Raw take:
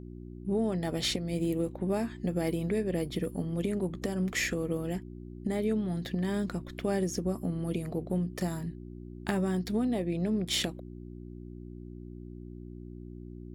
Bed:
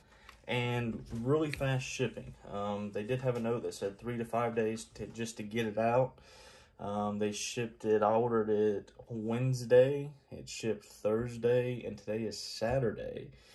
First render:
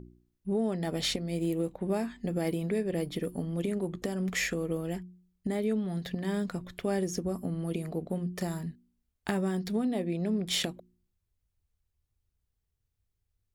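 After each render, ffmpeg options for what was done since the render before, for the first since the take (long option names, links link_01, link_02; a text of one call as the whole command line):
ffmpeg -i in.wav -af "bandreject=frequency=60:width_type=h:width=4,bandreject=frequency=120:width_type=h:width=4,bandreject=frequency=180:width_type=h:width=4,bandreject=frequency=240:width_type=h:width=4,bandreject=frequency=300:width_type=h:width=4,bandreject=frequency=360:width_type=h:width=4" out.wav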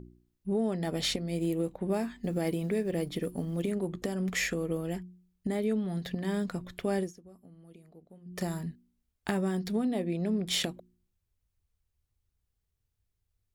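ffmpeg -i in.wav -filter_complex "[0:a]asettb=1/sr,asplit=3[link_01][link_02][link_03];[link_01]atrim=end=1.934[link_04];[link_02]atrim=start=1.93:end=3.72,asetpts=PTS-STARTPTS,afade=type=in:duration=0.004:curve=qsin,afade=type=out:start_time=1.786:duration=0.004:curve=qsin,acrusher=bits=9:mode=log:mix=0:aa=0.000001[link_05];[link_03]atrim=start=3.716[link_06];[link_04][link_05]acrossfade=duration=0.004:curve1=hsin:curve2=qsin[link_07];[link_07][link_06]acrossfade=duration=0.004:curve1=qsin:curve2=hsin,asplit=3[link_08][link_09][link_10];[link_08]atrim=end=7.13,asetpts=PTS-STARTPTS,afade=type=out:start_time=7:duration=0.13:silence=0.0944061[link_11];[link_09]atrim=start=7.13:end=8.25,asetpts=PTS-STARTPTS,volume=-20.5dB[link_12];[link_10]atrim=start=8.25,asetpts=PTS-STARTPTS,afade=type=in:duration=0.13:silence=0.0944061[link_13];[link_11][link_12][link_13]concat=n=3:v=0:a=1" out.wav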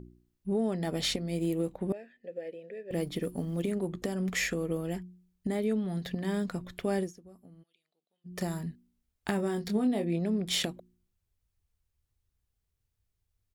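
ffmpeg -i in.wav -filter_complex "[0:a]asettb=1/sr,asplit=3[link_01][link_02][link_03];[link_01]atrim=end=1.924[link_04];[link_02]atrim=start=1.92:end=2.91,asetpts=PTS-STARTPTS,afade=type=in:duration=0.004:curve=qsin,afade=type=out:start_time=0.986:duration=0.004:curve=qsin,asplit=3[link_05][link_06][link_07];[link_05]bandpass=frequency=530:width_type=q:width=8,volume=0dB[link_08];[link_06]bandpass=frequency=1840:width_type=q:width=8,volume=-6dB[link_09];[link_07]bandpass=frequency=2480:width_type=q:width=8,volume=-9dB[link_10];[link_08][link_09][link_10]amix=inputs=3:normalize=0[link_11];[link_03]atrim=start=2.906[link_12];[link_04][link_11]acrossfade=duration=0.004:curve1=hsin:curve2=qsin[link_13];[link_13][link_12]acrossfade=duration=0.004:curve1=qsin:curve2=hsin,asplit=3[link_14][link_15][link_16];[link_14]afade=type=out:start_time=7.62:duration=0.02[link_17];[link_15]bandpass=frequency=3500:width_type=q:width=2.7,afade=type=in:start_time=7.62:duration=0.02,afade=type=out:start_time=8.24:duration=0.02[link_18];[link_16]afade=type=in:start_time=8.24:duration=0.02[link_19];[link_17][link_18][link_19]amix=inputs=3:normalize=0,asplit=3[link_20][link_21][link_22];[link_20]afade=type=out:start_time=9.38:duration=0.02[link_23];[link_21]asplit=2[link_24][link_25];[link_25]adelay=24,volume=-7dB[link_26];[link_24][link_26]amix=inputs=2:normalize=0,afade=type=in:start_time=9.38:duration=0.02,afade=type=out:start_time=10.18:duration=0.02[link_27];[link_22]afade=type=in:start_time=10.18:duration=0.02[link_28];[link_23][link_27][link_28]amix=inputs=3:normalize=0" out.wav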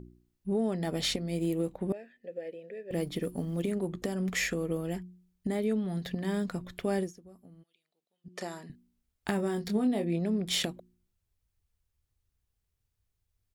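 ffmpeg -i in.wav -filter_complex "[0:a]asettb=1/sr,asplit=3[link_01][link_02][link_03];[link_01]atrim=end=8.284[link_04];[link_02]atrim=start=8.28:end=8.7,asetpts=PTS-STARTPTS,afade=type=in:duration=0.004:curve=qsin,afade=type=out:start_time=0.416:duration=0.004:curve=qsin,highpass=370,lowpass=7800[link_05];[link_03]atrim=start=8.696[link_06];[link_04][link_05]acrossfade=duration=0.004:curve1=hsin:curve2=qsin[link_07];[link_07][link_06]acrossfade=duration=0.004:curve1=qsin:curve2=hsin" out.wav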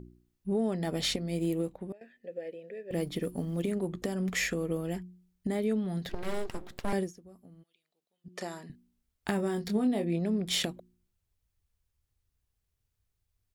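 ffmpeg -i in.wav -filter_complex "[0:a]asettb=1/sr,asplit=3[link_01][link_02][link_03];[link_01]atrim=end=6.094[link_04];[link_02]atrim=start=6.09:end=6.93,asetpts=PTS-STARTPTS,afade=type=in:duration=0.004:curve=qsin,afade=type=out:start_time=0.836:duration=0.004:curve=qsin,aeval=exprs='abs(val(0))':channel_layout=same[link_05];[link_03]atrim=start=6.926[link_06];[link_04][link_05]acrossfade=duration=0.004:curve1=hsin:curve2=qsin[link_07];[link_07][link_06]acrossfade=duration=0.004:curve1=qsin:curve2=hsin,asplit=2[link_08][link_09];[link_08]atrim=end=2.01,asetpts=PTS-STARTPTS,afade=type=out:start_time=1.56:duration=0.45:silence=0.149624[link_10];[link_09]atrim=start=2.01,asetpts=PTS-STARTPTS,afade=type=in:duration=0.004:curve=hsin:silence=0.149624[link_11];[link_10][link_11]concat=n=2:v=0:a=1" out.wav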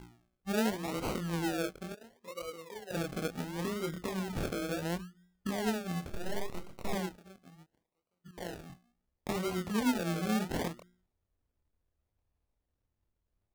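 ffmpeg -i in.wav -af "flanger=delay=22.5:depth=5.9:speed=1.6,acrusher=samples=36:mix=1:aa=0.000001:lfo=1:lforange=21.6:lforate=0.71" out.wav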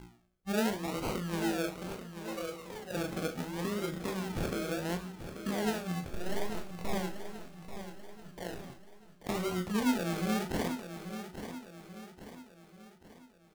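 ffmpeg -i in.wav -filter_complex "[0:a]asplit=2[link_01][link_02];[link_02]adelay=39,volume=-9.5dB[link_03];[link_01][link_03]amix=inputs=2:normalize=0,asplit=2[link_04][link_05];[link_05]aecho=0:1:836|1672|2508|3344|4180:0.316|0.149|0.0699|0.0328|0.0154[link_06];[link_04][link_06]amix=inputs=2:normalize=0" out.wav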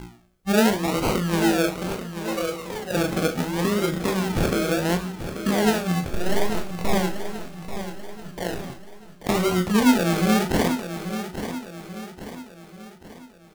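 ffmpeg -i in.wav -af "volume=12dB" out.wav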